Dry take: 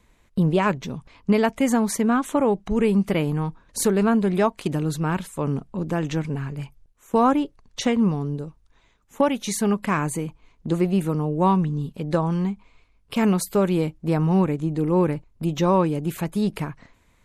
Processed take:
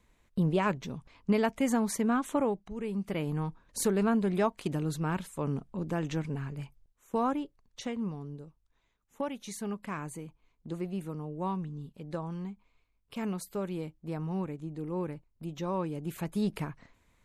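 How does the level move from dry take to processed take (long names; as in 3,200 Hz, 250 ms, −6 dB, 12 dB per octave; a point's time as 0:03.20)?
0:02.42 −7.5 dB
0:02.74 −17.5 dB
0:03.38 −7.5 dB
0:06.57 −7.5 dB
0:07.88 −14.5 dB
0:15.67 −14.5 dB
0:16.39 −7 dB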